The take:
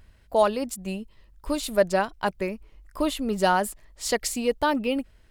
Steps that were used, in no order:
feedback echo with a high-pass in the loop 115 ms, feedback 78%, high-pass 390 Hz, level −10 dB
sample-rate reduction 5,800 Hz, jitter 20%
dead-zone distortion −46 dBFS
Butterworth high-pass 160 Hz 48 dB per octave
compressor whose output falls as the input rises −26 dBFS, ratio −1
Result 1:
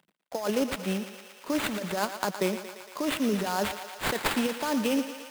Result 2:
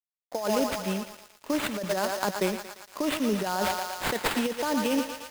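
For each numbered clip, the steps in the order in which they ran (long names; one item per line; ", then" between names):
compressor whose output falls as the input rises, then dead-zone distortion, then Butterworth high-pass, then sample-rate reduction, then feedback echo with a high-pass in the loop
Butterworth high-pass, then sample-rate reduction, then feedback echo with a high-pass in the loop, then dead-zone distortion, then compressor whose output falls as the input rises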